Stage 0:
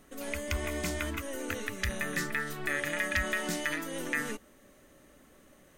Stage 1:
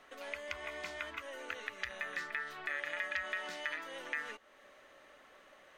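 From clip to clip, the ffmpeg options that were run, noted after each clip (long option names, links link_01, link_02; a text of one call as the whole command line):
ffmpeg -i in.wav -filter_complex "[0:a]acompressor=threshold=-47dB:ratio=2,acrossover=split=530 4600:gain=0.0891 1 0.1[link_01][link_02][link_03];[link_01][link_02][link_03]amix=inputs=3:normalize=0,volume=5dB" out.wav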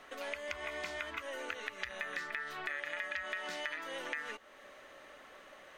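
ffmpeg -i in.wav -af "acompressor=threshold=-42dB:ratio=3,volume=5dB" out.wav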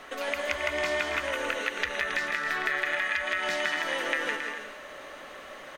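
ffmpeg -i in.wav -af "aecho=1:1:160|272|350.4|405.3|443.7:0.631|0.398|0.251|0.158|0.1,volume=9dB" out.wav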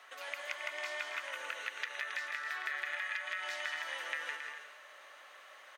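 ffmpeg -i in.wav -af "highpass=850,volume=-9dB" out.wav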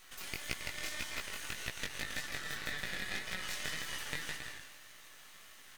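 ffmpeg -i in.wav -af "flanger=delay=16:depth=6.1:speed=1.8,aderivative,aeval=exprs='max(val(0),0)':channel_layout=same,volume=16.5dB" out.wav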